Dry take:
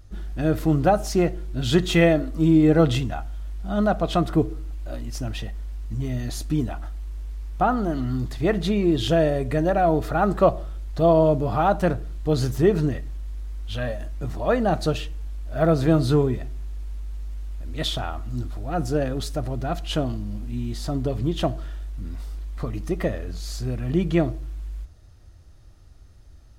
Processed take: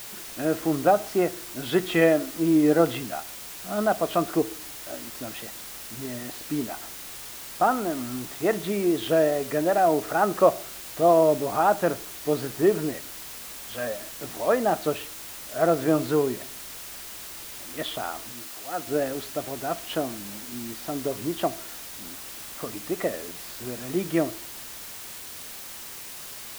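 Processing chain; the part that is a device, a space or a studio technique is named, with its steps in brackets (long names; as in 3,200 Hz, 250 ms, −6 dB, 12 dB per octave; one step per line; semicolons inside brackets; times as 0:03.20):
wax cylinder (band-pass filter 300–2,500 Hz; tape wow and flutter; white noise bed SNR 13 dB)
0:18.32–0:18.87: low-shelf EQ 450 Hz −11 dB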